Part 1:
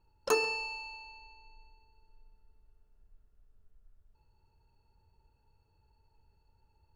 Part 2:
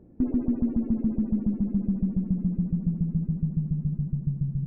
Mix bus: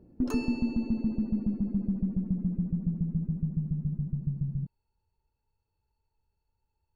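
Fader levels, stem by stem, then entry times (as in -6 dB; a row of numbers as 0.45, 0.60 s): -11.0, -3.5 dB; 0.00, 0.00 s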